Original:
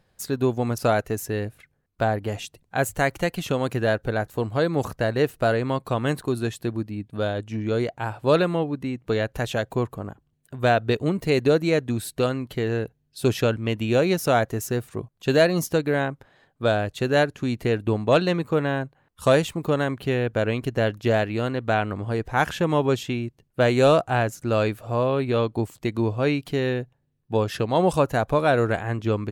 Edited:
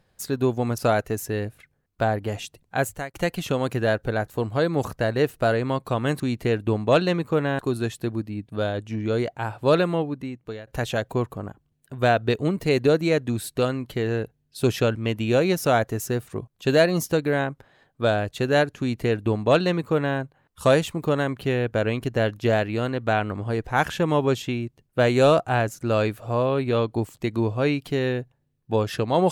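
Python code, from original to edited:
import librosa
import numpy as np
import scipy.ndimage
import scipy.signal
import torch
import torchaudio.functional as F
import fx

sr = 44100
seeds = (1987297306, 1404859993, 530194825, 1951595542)

y = fx.edit(x, sr, fx.fade_out_span(start_s=2.79, length_s=0.35),
    fx.fade_out_to(start_s=8.61, length_s=0.67, floor_db=-20.5),
    fx.duplicate(start_s=17.4, length_s=1.39, to_s=6.2), tone=tone)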